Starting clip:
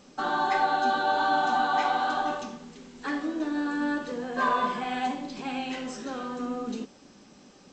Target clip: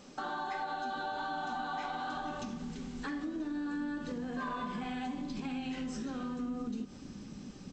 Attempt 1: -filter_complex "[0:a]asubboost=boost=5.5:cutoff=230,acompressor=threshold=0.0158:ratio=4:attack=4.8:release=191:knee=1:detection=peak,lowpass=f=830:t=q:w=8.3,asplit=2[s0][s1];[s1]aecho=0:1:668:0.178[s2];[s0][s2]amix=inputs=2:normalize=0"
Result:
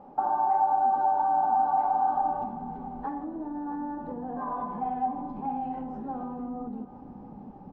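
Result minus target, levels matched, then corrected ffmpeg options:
echo-to-direct +8 dB; 1 kHz band +4.5 dB
-filter_complex "[0:a]asubboost=boost=5.5:cutoff=230,acompressor=threshold=0.0158:ratio=4:attack=4.8:release=191:knee=1:detection=peak,asplit=2[s0][s1];[s1]aecho=0:1:668:0.0708[s2];[s0][s2]amix=inputs=2:normalize=0"

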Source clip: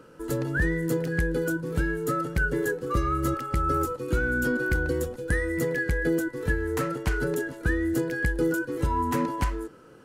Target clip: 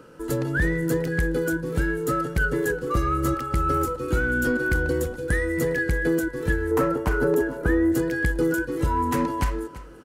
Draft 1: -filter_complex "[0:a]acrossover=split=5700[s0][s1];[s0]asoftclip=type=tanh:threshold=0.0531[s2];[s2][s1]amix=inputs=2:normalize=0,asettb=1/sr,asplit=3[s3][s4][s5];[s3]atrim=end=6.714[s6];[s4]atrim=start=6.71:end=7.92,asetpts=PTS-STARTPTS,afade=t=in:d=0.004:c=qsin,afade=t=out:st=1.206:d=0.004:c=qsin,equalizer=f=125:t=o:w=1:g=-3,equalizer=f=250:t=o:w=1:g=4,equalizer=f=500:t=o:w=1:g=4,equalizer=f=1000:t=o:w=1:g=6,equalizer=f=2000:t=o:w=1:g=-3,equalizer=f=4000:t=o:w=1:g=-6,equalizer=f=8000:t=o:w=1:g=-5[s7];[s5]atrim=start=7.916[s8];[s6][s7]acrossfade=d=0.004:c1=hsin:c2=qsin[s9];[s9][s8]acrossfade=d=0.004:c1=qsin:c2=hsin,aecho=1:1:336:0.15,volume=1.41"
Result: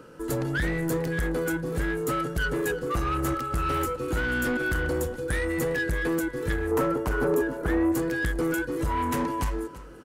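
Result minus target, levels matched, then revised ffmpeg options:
saturation: distortion +15 dB
-filter_complex "[0:a]acrossover=split=5700[s0][s1];[s0]asoftclip=type=tanh:threshold=0.2[s2];[s2][s1]amix=inputs=2:normalize=0,asettb=1/sr,asplit=3[s3][s4][s5];[s3]atrim=end=6.714[s6];[s4]atrim=start=6.71:end=7.92,asetpts=PTS-STARTPTS,afade=t=in:d=0.004:c=qsin,afade=t=out:st=1.206:d=0.004:c=qsin,equalizer=f=125:t=o:w=1:g=-3,equalizer=f=250:t=o:w=1:g=4,equalizer=f=500:t=o:w=1:g=4,equalizer=f=1000:t=o:w=1:g=6,equalizer=f=2000:t=o:w=1:g=-3,equalizer=f=4000:t=o:w=1:g=-6,equalizer=f=8000:t=o:w=1:g=-5[s7];[s5]atrim=start=7.916[s8];[s6][s7]acrossfade=d=0.004:c1=hsin:c2=qsin[s9];[s9][s8]acrossfade=d=0.004:c1=qsin:c2=hsin,aecho=1:1:336:0.15,volume=1.41"

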